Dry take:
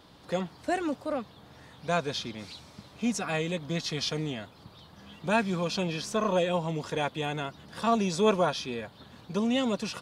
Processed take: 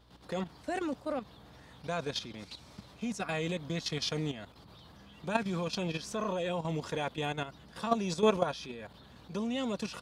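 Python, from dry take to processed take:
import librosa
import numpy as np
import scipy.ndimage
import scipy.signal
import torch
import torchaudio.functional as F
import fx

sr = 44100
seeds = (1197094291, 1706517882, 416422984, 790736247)

y = fx.level_steps(x, sr, step_db=11)
y = fx.add_hum(y, sr, base_hz=60, snr_db=28)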